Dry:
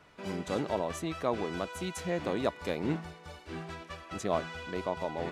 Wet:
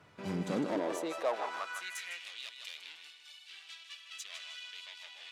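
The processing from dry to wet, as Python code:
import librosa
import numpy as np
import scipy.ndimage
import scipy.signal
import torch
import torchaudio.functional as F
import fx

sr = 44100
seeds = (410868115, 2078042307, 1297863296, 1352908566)

y = fx.echo_feedback(x, sr, ms=155, feedback_pct=36, wet_db=-9.0)
y = fx.tube_stage(y, sr, drive_db=30.0, bias=0.55)
y = fx.filter_sweep_highpass(y, sr, from_hz=100.0, to_hz=3100.0, start_s=0.12, end_s=2.3, q=2.3)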